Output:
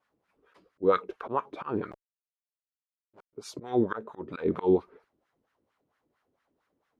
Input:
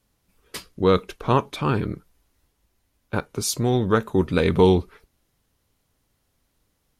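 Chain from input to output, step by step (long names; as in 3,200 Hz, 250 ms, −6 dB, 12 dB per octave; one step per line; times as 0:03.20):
0:01.91–0:03.33: comparator with hysteresis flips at −30 dBFS
volume swells 237 ms
LFO wah 4.4 Hz 300–1,600 Hz, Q 2.2
level +5.5 dB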